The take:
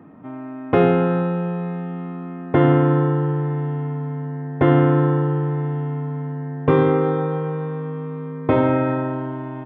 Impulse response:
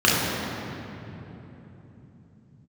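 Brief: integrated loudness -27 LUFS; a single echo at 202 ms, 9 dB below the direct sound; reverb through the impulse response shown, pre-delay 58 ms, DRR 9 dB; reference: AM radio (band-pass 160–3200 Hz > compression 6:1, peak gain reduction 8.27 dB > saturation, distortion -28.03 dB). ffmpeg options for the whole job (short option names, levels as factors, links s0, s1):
-filter_complex "[0:a]aecho=1:1:202:0.355,asplit=2[s0][s1];[1:a]atrim=start_sample=2205,adelay=58[s2];[s1][s2]afir=irnorm=-1:irlink=0,volume=0.0282[s3];[s0][s3]amix=inputs=2:normalize=0,highpass=160,lowpass=3200,acompressor=threshold=0.112:ratio=6,asoftclip=threshold=0.316,volume=0.891"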